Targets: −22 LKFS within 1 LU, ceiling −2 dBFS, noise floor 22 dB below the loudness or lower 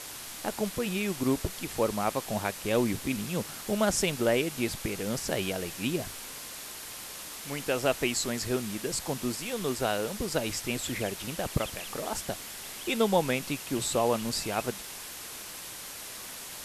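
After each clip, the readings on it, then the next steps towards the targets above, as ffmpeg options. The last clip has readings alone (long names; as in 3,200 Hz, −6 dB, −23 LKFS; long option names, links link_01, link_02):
background noise floor −42 dBFS; target noise floor −53 dBFS; integrated loudness −31.0 LKFS; sample peak −11.5 dBFS; target loudness −22.0 LKFS
→ -af "afftdn=noise_reduction=11:noise_floor=-42"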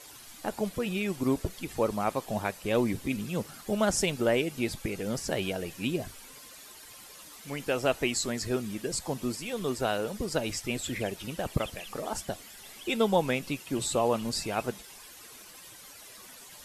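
background noise floor −49 dBFS; target noise floor −53 dBFS
→ -af "afftdn=noise_reduction=6:noise_floor=-49"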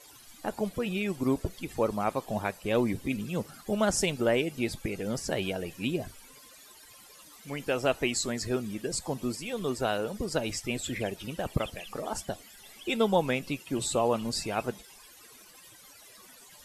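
background noise floor −53 dBFS; integrated loudness −31.0 LKFS; sample peak −12.0 dBFS; target loudness −22.0 LKFS
→ -af "volume=9dB"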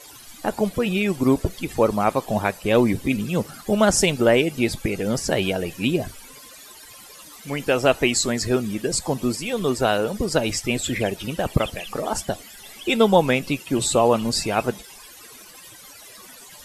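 integrated loudness −22.0 LKFS; sample peak −3.0 dBFS; background noise floor −44 dBFS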